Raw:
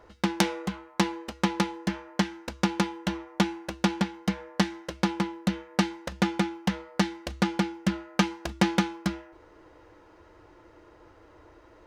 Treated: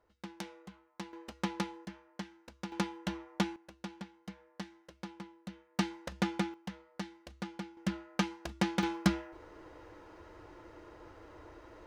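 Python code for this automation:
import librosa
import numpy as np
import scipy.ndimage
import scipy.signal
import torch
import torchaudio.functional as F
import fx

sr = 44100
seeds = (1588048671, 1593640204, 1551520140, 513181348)

y = fx.gain(x, sr, db=fx.steps((0.0, -19.5), (1.13, -9.5), (1.85, -17.0), (2.72, -7.5), (3.56, -19.0), (5.79, -7.0), (6.54, -16.0), (7.77, -8.0), (8.83, 1.0)))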